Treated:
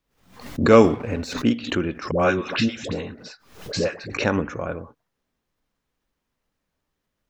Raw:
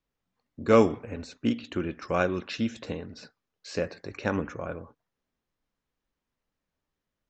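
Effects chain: 0.84–1.34 sample leveller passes 1; 2.11–4.1 dispersion highs, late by 88 ms, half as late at 610 Hz; backwards sustainer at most 100 dB/s; gain +6 dB

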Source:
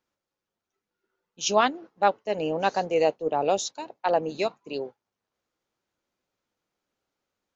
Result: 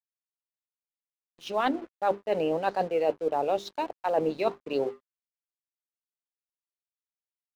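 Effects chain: tone controls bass -5 dB, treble +7 dB; in parallel at -5 dB: soft clip -20.5 dBFS, distortion -9 dB; on the sum: notches 50/100/150/200/250/300/350/400 Hz; reverse; compressor 8:1, threshold -27 dBFS, peak gain reduction 14 dB; reverse; air absorption 390 m; crossover distortion -55 dBFS; gain +6 dB

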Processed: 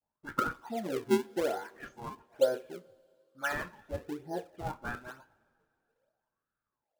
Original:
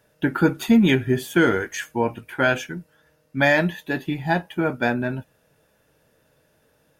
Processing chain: spectral delay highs late, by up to 0.172 s; gate -50 dBFS, range -12 dB; wah 0.65 Hz 400–1300 Hz, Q 13; in parallel at -4 dB: decimation with a swept rate 41×, swing 160% 1.1 Hz; on the sum: two-slope reverb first 0.25 s, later 2.6 s, from -21 dB, DRR 14 dB; gain +2.5 dB

